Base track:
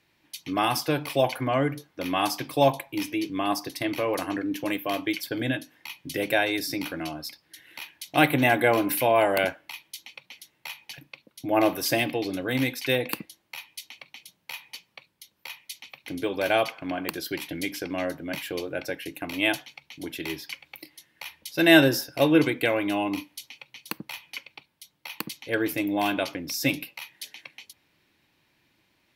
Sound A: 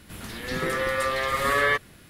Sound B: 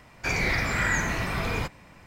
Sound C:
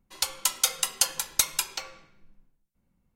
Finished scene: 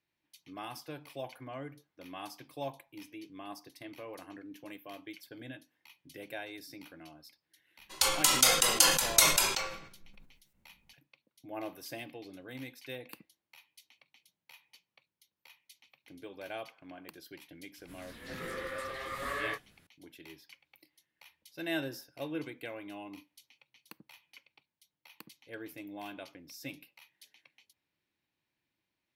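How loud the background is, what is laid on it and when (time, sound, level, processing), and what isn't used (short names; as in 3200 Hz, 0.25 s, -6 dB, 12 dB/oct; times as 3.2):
base track -18.5 dB
7.79 add C -1 dB + sustainer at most 72 dB/s
17.78 add A -10.5 dB + detuned doubles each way 45 cents
not used: B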